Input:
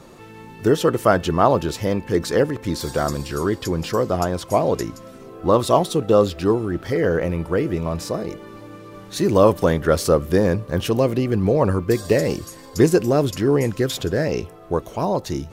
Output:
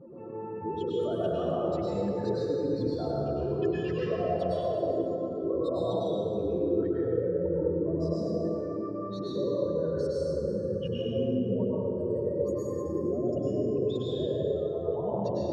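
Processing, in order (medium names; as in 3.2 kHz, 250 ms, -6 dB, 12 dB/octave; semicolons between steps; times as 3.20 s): spectral contrast enhancement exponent 2.7; compression, threshold -25 dBFS, peak gain reduction 14 dB; peak limiter -27 dBFS, peak gain reduction 10.5 dB; band-pass filter 510 Hz, Q 0.52; reverberation RT60 2.7 s, pre-delay 93 ms, DRR -8 dB; trim -2 dB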